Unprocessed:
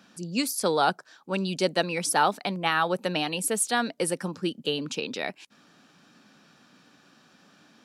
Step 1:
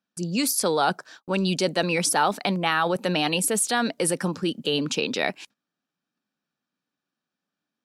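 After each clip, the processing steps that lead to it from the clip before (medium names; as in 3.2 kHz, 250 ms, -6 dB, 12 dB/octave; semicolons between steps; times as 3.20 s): gate -51 dBFS, range -35 dB; in parallel at -2.5 dB: compressor with a negative ratio -29 dBFS, ratio -0.5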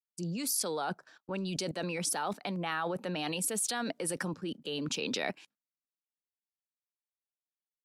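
level held to a coarse grid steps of 17 dB; three bands expanded up and down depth 70%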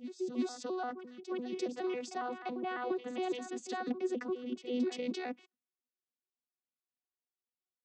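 vocoder on a broken chord bare fifth, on B3, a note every 138 ms; on a send: reverse echo 344 ms -10.5 dB; on the sum: trim -1 dB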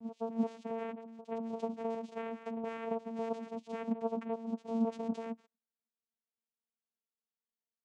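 vocoder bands 4, saw 227 Hz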